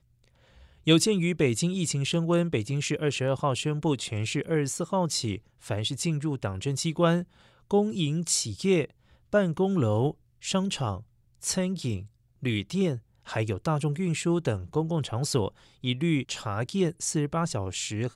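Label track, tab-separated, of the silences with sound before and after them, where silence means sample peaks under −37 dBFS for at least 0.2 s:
5.380000	5.650000	silence
7.230000	7.710000	silence
8.850000	9.330000	silence
10.110000	10.440000	silence
11.000000	11.430000	silence
12.040000	12.430000	silence
12.980000	13.280000	silence
15.490000	15.840000	silence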